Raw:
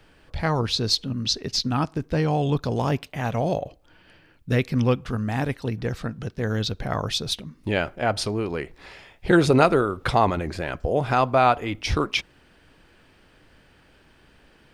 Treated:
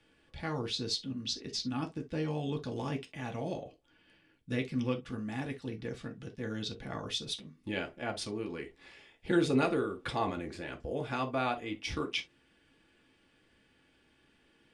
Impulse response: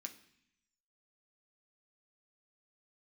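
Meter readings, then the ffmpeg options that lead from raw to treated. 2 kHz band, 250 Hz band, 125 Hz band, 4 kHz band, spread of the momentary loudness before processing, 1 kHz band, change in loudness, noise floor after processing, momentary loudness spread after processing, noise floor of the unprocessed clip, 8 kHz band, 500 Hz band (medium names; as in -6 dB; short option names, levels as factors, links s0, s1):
-11.0 dB, -9.0 dB, -14.5 dB, -10.0 dB, 10 LU, -14.5 dB, -11.5 dB, -68 dBFS, 10 LU, -57 dBFS, -10.5 dB, -12.0 dB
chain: -filter_complex "[0:a]lowpass=f=10000:w=0.5412,lowpass=f=10000:w=1.3066[s0];[1:a]atrim=start_sample=2205,atrim=end_sample=4410,asetrate=61740,aresample=44100[s1];[s0][s1]afir=irnorm=-1:irlink=0,volume=0.75"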